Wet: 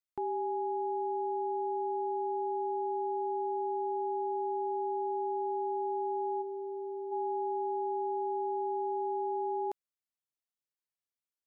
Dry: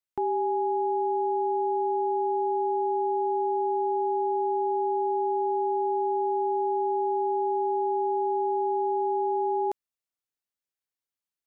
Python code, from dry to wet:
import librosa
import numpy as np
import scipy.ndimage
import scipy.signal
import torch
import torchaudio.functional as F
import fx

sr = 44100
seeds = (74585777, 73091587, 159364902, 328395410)

y = fx.peak_eq(x, sr, hz=940.0, db=-13.0, octaves=1.3, at=(6.41, 7.11), fade=0.02)
y = F.gain(torch.from_numpy(y), -7.0).numpy()